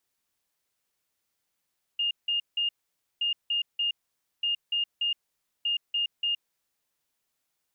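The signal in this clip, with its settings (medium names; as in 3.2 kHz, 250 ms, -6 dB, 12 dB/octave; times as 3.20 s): beep pattern sine 2.83 kHz, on 0.12 s, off 0.17 s, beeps 3, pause 0.52 s, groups 4, -24 dBFS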